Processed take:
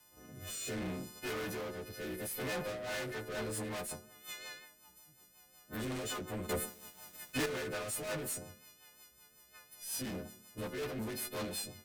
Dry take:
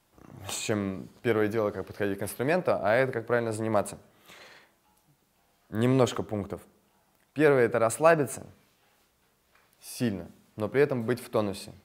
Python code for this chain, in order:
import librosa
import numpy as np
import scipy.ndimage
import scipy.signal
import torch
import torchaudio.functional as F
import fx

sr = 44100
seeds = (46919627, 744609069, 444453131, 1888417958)

y = fx.freq_snap(x, sr, grid_st=3)
y = fx.tube_stage(y, sr, drive_db=37.0, bias=0.3)
y = fx.rotary_switch(y, sr, hz=0.65, then_hz=5.5, switch_at_s=2.38)
y = fx.leveller(y, sr, passes=3, at=(6.49, 7.46))
y = y * 10.0 ** (1.5 / 20.0)